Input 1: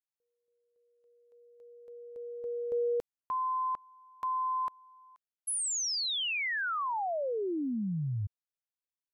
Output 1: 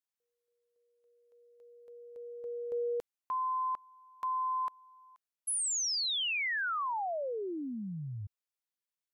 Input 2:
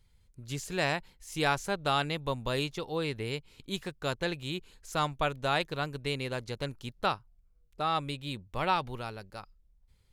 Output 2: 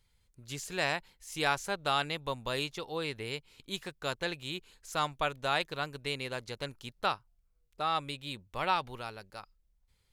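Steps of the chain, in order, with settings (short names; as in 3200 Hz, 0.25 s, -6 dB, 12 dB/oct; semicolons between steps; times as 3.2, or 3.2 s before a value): low shelf 430 Hz -7.5 dB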